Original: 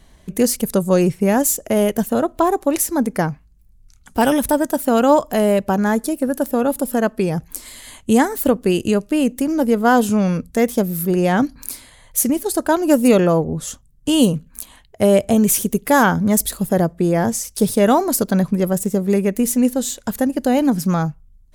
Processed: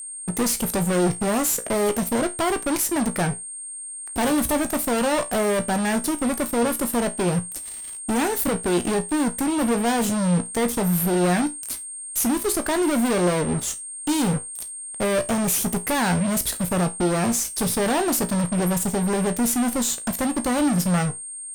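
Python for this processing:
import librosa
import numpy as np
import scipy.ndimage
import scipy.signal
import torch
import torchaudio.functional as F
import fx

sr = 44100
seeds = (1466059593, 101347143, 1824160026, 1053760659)

y = fx.fuzz(x, sr, gain_db=26.0, gate_db=-34.0)
y = fx.comb_fb(y, sr, f0_hz=59.0, decay_s=0.22, harmonics='all', damping=0.0, mix_pct=70)
y = y + 10.0 ** (-30.0 / 20.0) * np.sin(2.0 * np.pi * 8600.0 * np.arange(len(y)) / sr)
y = F.gain(torch.from_numpy(y), -2.5).numpy()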